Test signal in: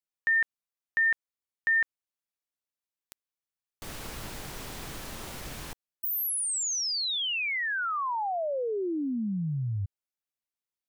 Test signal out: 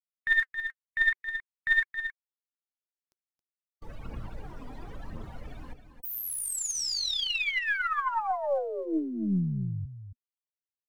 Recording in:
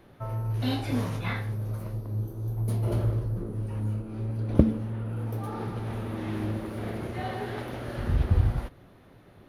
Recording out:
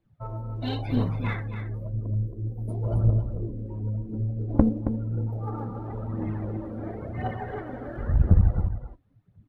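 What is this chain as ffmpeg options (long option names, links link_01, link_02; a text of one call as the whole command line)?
ffmpeg -i in.wav -af "bandreject=frequency=370:width=12,afftdn=noise_reduction=23:noise_floor=-40,highshelf=frequency=8300:gain=-7.5,aphaser=in_gain=1:out_gain=1:delay=4.2:decay=0.52:speed=0.96:type=triangular,aeval=exprs='(tanh(2.82*val(0)+0.65)-tanh(0.65))/2.82':channel_layout=same,aecho=1:1:272:0.335,volume=2.5dB" out.wav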